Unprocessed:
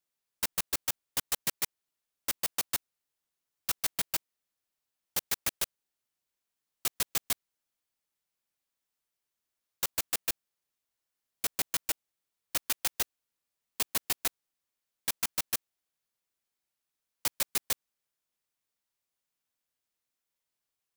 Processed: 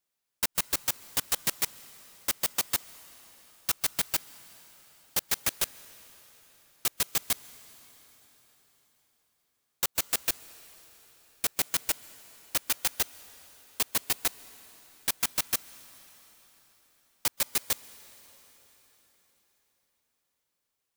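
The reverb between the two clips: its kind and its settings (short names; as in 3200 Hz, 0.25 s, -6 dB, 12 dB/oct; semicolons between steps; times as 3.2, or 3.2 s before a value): plate-style reverb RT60 4.8 s, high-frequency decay 0.9×, pre-delay 0.115 s, DRR 18 dB; gain +3 dB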